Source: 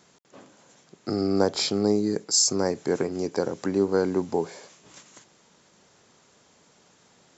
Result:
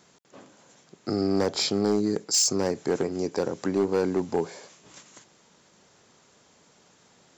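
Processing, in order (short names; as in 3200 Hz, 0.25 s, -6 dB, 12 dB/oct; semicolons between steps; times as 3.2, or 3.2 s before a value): hard clip -17 dBFS, distortion -14 dB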